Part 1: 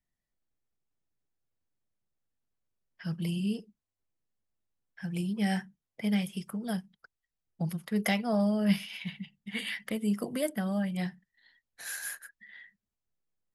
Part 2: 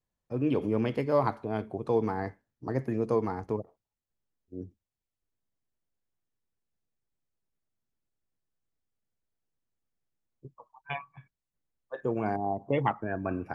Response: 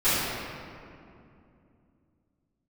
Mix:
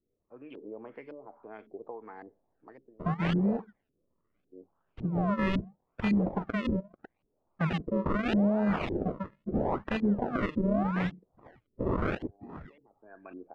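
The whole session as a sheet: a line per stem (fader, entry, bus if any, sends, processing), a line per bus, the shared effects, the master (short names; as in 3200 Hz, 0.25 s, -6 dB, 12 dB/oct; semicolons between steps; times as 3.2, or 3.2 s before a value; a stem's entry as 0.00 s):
-1.5 dB, 0.00 s, no send, high shelf 3400 Hz +11.5 dB; decimation with a swept rate 39×, swing 100% 0.78 Hz
-15.5 dB, 0.00 s, no send, HPF 310 Hz 12 dB/oct; compressor 10:1, threshold -31 dBFS, peak gain reduction 11.5 dB; auto duck -19 dB, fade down 0.40 s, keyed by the first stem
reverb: off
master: AGC gain up to 5 dB; LFO low-pass saw up 1.8 Hz 290–3200 Hz; limiter -19.5 dBFS, peak gain reduction 9.5 dB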